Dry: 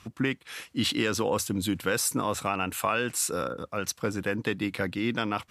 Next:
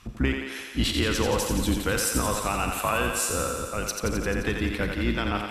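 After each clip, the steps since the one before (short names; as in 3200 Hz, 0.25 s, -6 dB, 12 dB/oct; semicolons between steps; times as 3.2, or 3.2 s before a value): octaver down 2 oct, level +2 dB; thinning echo 87 ms, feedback 74%, high-pass 270 Hz, level -5 dB; Schroeder reverb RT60 0.39 s, combs from 30 ms, DRR 13.5 dB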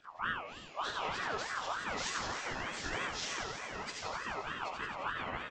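inharmonic rescaling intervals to 83%; tapped delay 69/778 ms -7/-8 dB; ring modulator with a swept carrier 1200 Hz, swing 30%, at 3.3 Hz; gain -9 dB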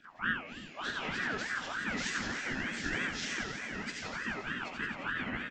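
EQ curve 110 Hz 0 dB, 240 Hz +10 dB, 450 Hz -3 dB, 1100 Hz -9 dB, 1600 Hz +5 dB, 4000 Hz -2 dB; gain +1.5 dB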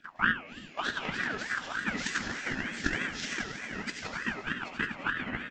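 transient shaper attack +11 dB, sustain -1 dB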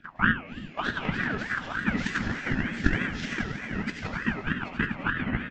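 tone controls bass +10 dB, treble -11 dB; gain +3 dB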